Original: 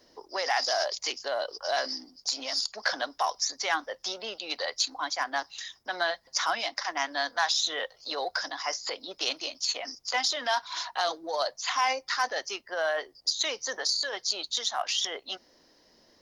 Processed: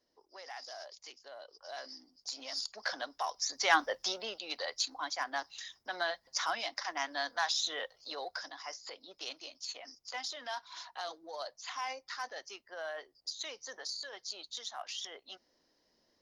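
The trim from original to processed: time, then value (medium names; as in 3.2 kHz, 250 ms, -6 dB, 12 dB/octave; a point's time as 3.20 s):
1.39 s -19 dB
2.63 s -8 dB
3.36 s -8 dB
3.77 s +3 dB
4.46 s -6 dB
7.75 s -6 dB
8.75 s -12.5 dB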